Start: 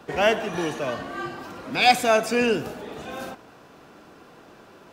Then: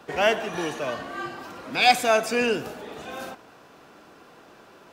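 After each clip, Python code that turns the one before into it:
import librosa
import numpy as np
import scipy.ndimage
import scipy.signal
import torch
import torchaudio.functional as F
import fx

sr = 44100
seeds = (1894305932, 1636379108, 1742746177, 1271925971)

y = fx.low_shelf(x, sr, hz=330.0, db=-5.5)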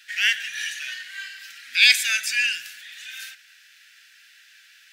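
y = scipy.signal.sosfilt(scipy.signal.ellip(4, 1.0, 40, 1700.0, 'highpass', fs=sr, output='sos'), x)
y = y * 10.0 ** (7.5 / 20.0)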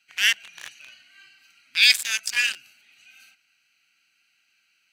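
y = fx.wiener(x, sr, points=25)
y = fx.high_shelf(y, sr, hz=4300.0, db=12.0)
y = fx.rider(y, sr, range_db=10, speed_s=0.5)
y = y * 10.0 ** (-5.0 / 20.0)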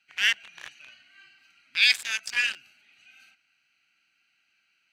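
y = fx.lowpass(x, sr, hz=2600.0, slope=6)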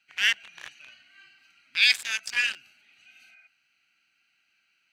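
y = fx.spec_repair(x, sr, seeds[0], start_s=3.16, length_s=0.28, low_hz=570.0, high_hz=2500.0, source='before')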